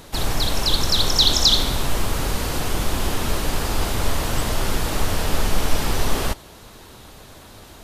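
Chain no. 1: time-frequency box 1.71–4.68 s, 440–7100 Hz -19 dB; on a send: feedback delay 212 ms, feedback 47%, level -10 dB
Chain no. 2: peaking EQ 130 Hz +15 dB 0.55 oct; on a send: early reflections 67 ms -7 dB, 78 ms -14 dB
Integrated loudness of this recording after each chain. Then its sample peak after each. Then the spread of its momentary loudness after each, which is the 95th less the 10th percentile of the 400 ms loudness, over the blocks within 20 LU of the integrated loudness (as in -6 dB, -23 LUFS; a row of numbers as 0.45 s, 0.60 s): -21.5 LUFS, -19.0 LUFS; -3.0 dBFS, -2.5 dBFS; 12 LU, 7 LU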